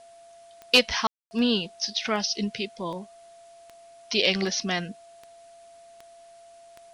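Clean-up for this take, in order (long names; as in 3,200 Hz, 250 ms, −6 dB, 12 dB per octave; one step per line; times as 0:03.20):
click removal
notch filter 680 Hz, Q 30
ambience match 0:01.07–0:01.31
downward expander −43 dBFS, range −21 dB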